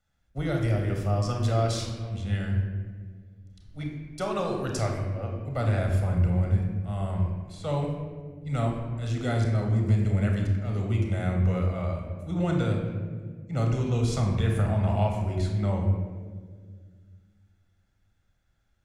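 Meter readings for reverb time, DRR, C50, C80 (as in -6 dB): 1.7 s, 1.0 dB, 4.0 dB, 5.5 dB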